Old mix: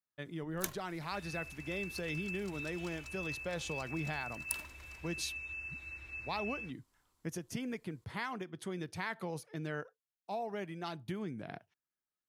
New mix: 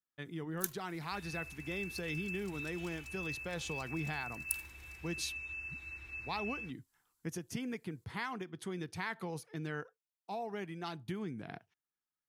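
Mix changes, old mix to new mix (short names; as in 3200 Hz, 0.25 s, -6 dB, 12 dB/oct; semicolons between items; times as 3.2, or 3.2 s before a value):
first sound: add pre-emphasis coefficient 0.8; master: add bell 590 Hz -9.5 dB 0.22 oct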